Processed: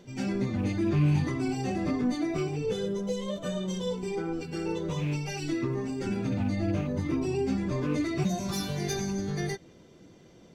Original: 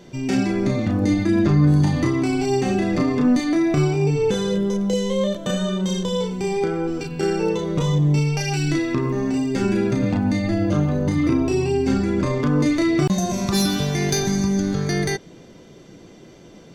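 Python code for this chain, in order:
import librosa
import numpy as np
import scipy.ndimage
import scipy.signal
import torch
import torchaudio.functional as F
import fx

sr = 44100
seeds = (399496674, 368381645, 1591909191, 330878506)

y = fx.rattle_buzz(x, sr, strikes_db=-16.0, level_db=-22.0)
y = fx.stretch_vocoder_free(y, sr, factor=0.63)
y = fx.peak_eq(y, sr, hz=82.0, db=3.5, octaves=0.77)
y = y * librosa.db_to_amplitude(-6.5)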